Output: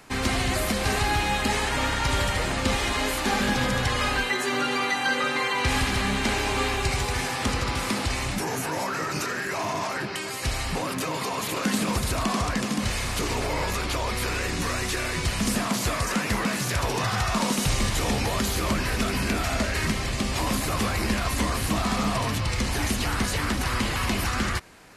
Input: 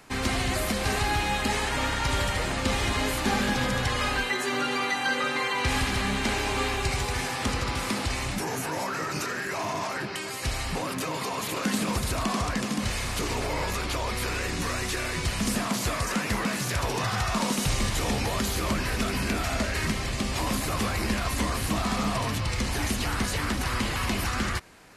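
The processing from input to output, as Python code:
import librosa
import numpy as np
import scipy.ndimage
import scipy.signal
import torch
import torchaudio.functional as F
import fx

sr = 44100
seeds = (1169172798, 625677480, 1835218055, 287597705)

y = fx.peak_eq(x, sr, hz=110.0, db=-8.0, octaves=1.7, at=(2.76, 3.41))
y = F.gain(torch.from_numpy(y), 2.0).numpy()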